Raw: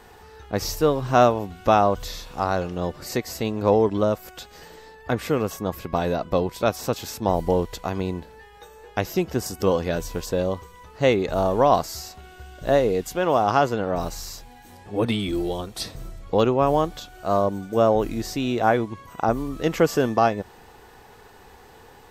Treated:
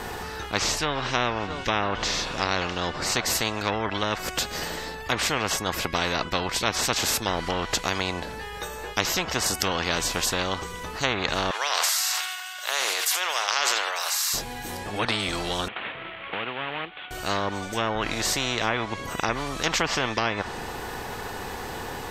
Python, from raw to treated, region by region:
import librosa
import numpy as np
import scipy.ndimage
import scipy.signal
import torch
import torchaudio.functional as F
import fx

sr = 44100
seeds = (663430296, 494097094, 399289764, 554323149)

y = fx.chain(x, sr, fx.air_absorb(metres=67.0),
    fx.echo_single(ms=662, db=-22.5), at=(0.58, 3.26))
y = fx.chain(y, sr, fx.highpass(hz=1100.0, slope=24),
    fx.echo_single(ms=82, db=-17.0),
    fx.sustainer(db_per_s=36.0), at=(11.51, 14.34))
y = fx.chain(y, sr, fx.cvsd(bps=16000),
    fx.differentiator(),
    fx.band_squash(depth_pct=70), at=(15.68, 17.11))
y = fx.env_lowpass_down(y, sr, base_hz=2100.0, full_db=-14.0)
y = fx.dynamic_eq(y, sr, hz=1100.0, q=0.73, threshold_db=-32.0, ratio=4.0, max_db=7)
y = fx.spectral_comp(y, sr, ratio=4.0)
y = F.gain(torch.from_numpy(y), -4.0).numpy()